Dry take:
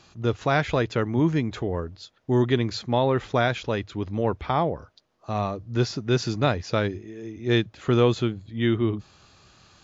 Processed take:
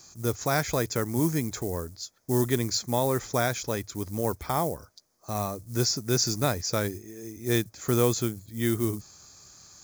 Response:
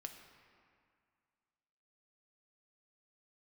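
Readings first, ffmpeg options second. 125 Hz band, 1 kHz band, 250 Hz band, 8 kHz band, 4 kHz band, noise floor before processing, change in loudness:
−4.0 dB, −4.0 dB, −4.0 dB, can't be measured, 0.0 dB, −60 dBFS, −2.5 dB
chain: -af "acrusher=bits=8:mode=log:mix=0:aa=0.000001,aexciter=amount=8:drive=5.7:freq=5100,bandreject=frequency=2800:width=6.5,volume=-4dB"

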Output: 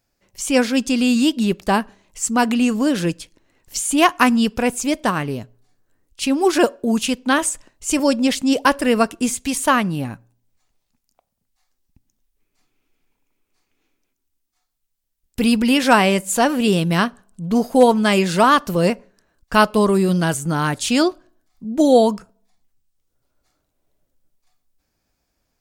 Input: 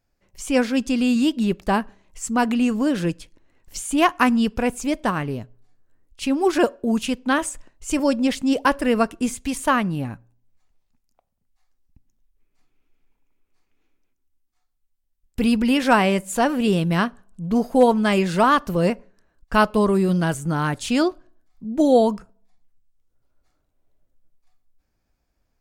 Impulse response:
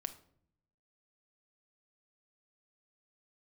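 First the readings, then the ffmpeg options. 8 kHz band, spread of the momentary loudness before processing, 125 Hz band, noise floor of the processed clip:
+8.0 dB, 12 LU, +2.0 dB, −74 dBFS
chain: -filter_complex "[0:a]lowshelf=frequency=64:gain=-9.5,acrossover=split=3200[link_01][link_02];[link_02]acontrast=30[link_03];[link_01][link_03]amix=inputs=2:normalize=0,volume=3dB"

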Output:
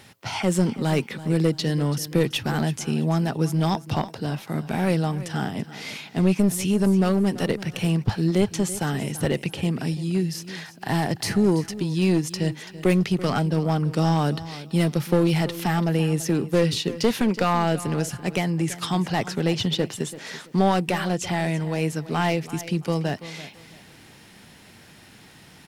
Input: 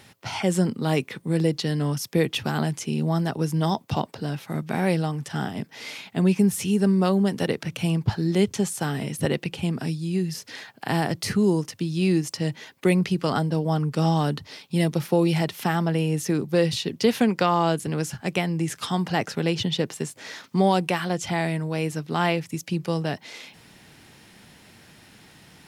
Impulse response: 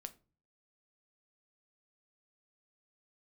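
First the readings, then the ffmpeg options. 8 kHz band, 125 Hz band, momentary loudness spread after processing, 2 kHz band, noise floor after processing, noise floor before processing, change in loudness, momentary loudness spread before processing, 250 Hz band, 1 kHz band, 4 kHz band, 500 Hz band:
+1.5 dB, +1.5 dB, 7 LU, 0.0 dB, −49 dBFS, −52 dBFS, +0.5 dB, 9 LU, +1.0 dB, 0.0 dB, +0.5 dB, 0.0 dB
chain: -filter_complex "[0:a]aeval=exprs='clip(val(0),-1,0.0891)':channel_layout=same,asplit=2[link_01][link_02];[link_02]aecho=0:1:334|668|1002:0.168|0.0453|0.0122[link_03];[link_01][link_03]amix=inputs=2:normalize=0,volume=1.5dB"

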